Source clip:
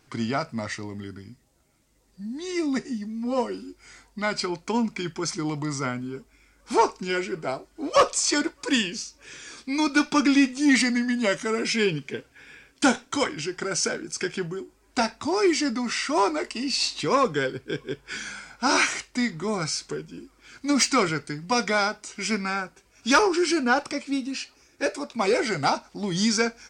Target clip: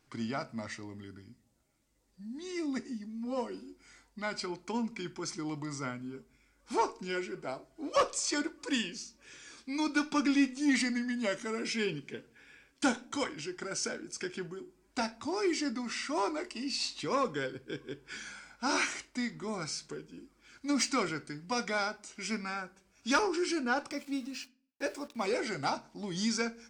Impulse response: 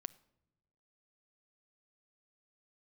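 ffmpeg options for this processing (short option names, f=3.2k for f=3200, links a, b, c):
-filter_complex "[0:a]asettb=1/sr,asplit=3[a][b][c];[a]atrim=end=23.894[d];[b]atrim=start=23.89:end=25.26,asetpts=PTS-STARTPTS,afade=t=in:d=0.004:c=qsin,afade=t=out:st=1.366:d=0.004:c=qsin,aeval=exprs='val(0)*gte(abs(val(0)),0.0075)':c=same[e];[c]atrim=start=25.256[f];[d][e]acrossfade=d=0.004:c1=hsin:c2=qsin[g];[g][f]acrossfade=d=0.004:c1=qsin:c2=hsin[h];[1:a]atrim=start_sample=2205,asetrate=83790,aresample=44100[i];[h][i]afir=irnorm=-1:irlink=0"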